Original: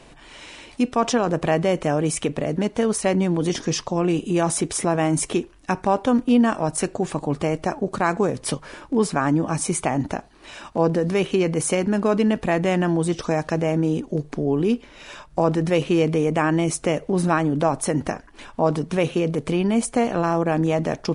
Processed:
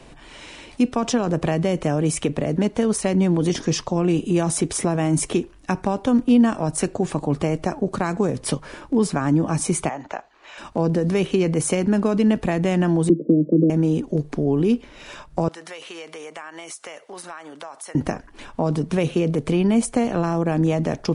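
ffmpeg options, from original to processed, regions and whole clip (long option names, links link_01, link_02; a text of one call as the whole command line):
ffmpeg -i in.wav -filter_complex "[0:a]asettb=1/sr,asplit=3[link_01][link_02][link_03];[link_01]atrim=end=9.894[link_04];[link_02]atrim=start=9.89:end=10.58,asetpts=PTS-STARTPTS,afade=type=in:duration=0.004:curve=qsin,afade=type=out:start_time=0.686:duration=0.004:curve=qsin,lowpass=frequency=6900:width_type=q:width=5.8,acrossover=split=510 3400:gain=0.0891 1 0.0708[link_05][link_06][link_07];[link_05][link_06][link_07]amix=inputs=3:normalize=0[link_08];[link_03]atrim=start=10.576[link_09];[link_04][link_08]acrossfade=duration=0.004:curve1=hsin:curve2=qsin[link_10];[link_10][link_09]acrossfade=duration=0.004:curve1=qsin:curve2=hsin,asettb=1/sr,asplit=3[link_11][link_12][link_13];[link_11]atrim=end=13.094[link_14];[link_12]atrim=start=13.09:end=13.7,asetpts=PTS-STARTPTS,afade=type=in:duration=0.004:curve=qsin,afade=type=out:start_time=0.606:duration=0.004:curve=qsin,asuperpass=centerf=290:order=20:qfactor=0.67,equalizer=frequency=310:width_type=o:width=0.69:gain=14[link_15];[link_13]atrim=start=13.696[link_16];[link_14][link_15]acrossfade=duration=0.004:curve1=hsin:curve2=qsin[link_17];[link_17][link_16]acrossfade=duration=0.004:curve1=qsin:curve2=hsin,asettb=1/sr,asplit=3[link_18][link_19][link_20];[link_18]atrim=end=15.484[link_21];[link_19]atrim=start=15.48:end=17.95,asetpts=PTS-STARTPTS,afade=type=in:duration=0.004:curve=qsin,afade=type=out:start_time=2.466:duration=0.004:curve=qsin,highpass=1000,bandreject=frequency=2500:width=19,acompressor=threshold=-33dB:ratio=5:attack=3.2:release=140:knee=1:detection=peak[link_22];[link_20]atrim=start=17.946[link_23];[link_21][link_22]acrossfade=duration=0.004:curve1=hsin:curve2=qsin[link_24];[link_24][link_23]acrossfade=duration=0.004:curve1=qsin:curve2=hsin,acrossover=split=280|3000[link_25][link_26][link_27];[link_26]acompressor=threshold=-22dB:ratio=6[link_28];[link_25][link_28][link_27]amix=inputs=3:normalize=0,lowshelf=frequency=480:gain=3.5" out.wav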